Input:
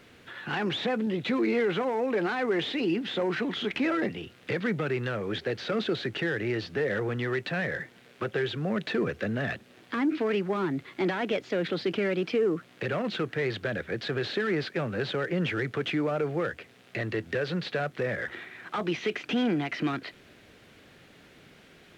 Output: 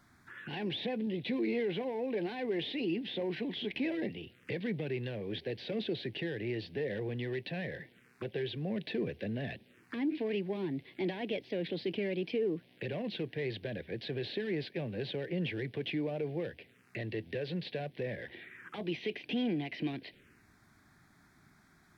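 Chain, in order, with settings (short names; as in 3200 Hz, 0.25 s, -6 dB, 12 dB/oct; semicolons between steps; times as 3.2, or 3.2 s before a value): envelope phaser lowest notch 430 Hz, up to 1300 Hz, full sweep at -33.5 dBFS; gain -5.5 dB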